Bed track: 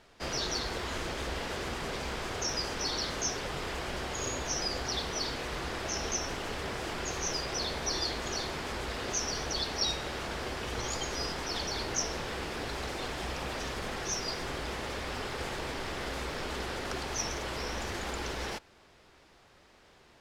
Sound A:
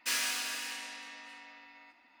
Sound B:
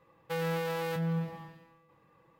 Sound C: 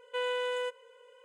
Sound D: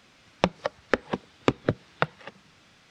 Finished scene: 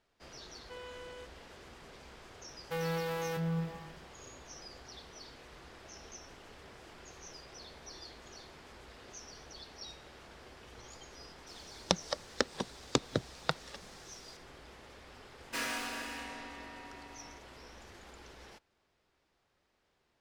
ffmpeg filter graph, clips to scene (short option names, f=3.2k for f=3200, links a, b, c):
-filter_complex "[0:a]volume=-17dB[a];[4:a]aexciter=amount=7.5:drive=3.3:freq=3.7k[b];[1:a]tiltshelf=f=1.5k:g=9.5[c];[3:a]atrim=end=1.24,asetpts=PTS-STARTPTS,volume=-16dB,afade=t=in:d=0.004:c=hsin,afade=t=out:st=1.236:d=0.004:c=hsin,adelay=560[d];[2:a]atrim=end=2.39,asetpts=PTS-STARTPTS,volume=-2.5dB,afade=t=in:d=0.004:c=hsin,afade=t=out:st=2.386:d=0.004:c=hsin,adelay=2410[e];[b]atrim=end=2.9,asetpts=PTS-STARTPTS,volume=-8dB,afade=t=in:d=0.004:c=hsin,afade=t=out:st=2.896:d=0.004:c=hsin,adelay=11470[f];[c]atrim=end=2.2,asetpts=PTS-STARTPTS,volume=-0.5dB,afade=t=in:d=0.004:c=hsin,afade=t=out:st=2.196:d=0.004:c=hsin,adelay=15470[g];[a][d][e][f][g]amix=inputs=5:normalize=0"